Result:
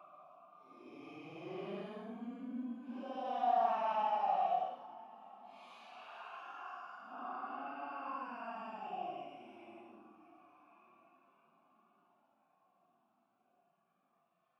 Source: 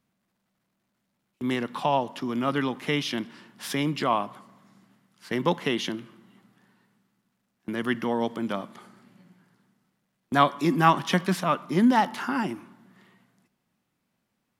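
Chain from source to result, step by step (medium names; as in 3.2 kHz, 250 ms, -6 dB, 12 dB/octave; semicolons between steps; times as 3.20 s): vowel filter a; Paulstretch 11×, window 0.05 s, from 11.63 s; trim -4 dB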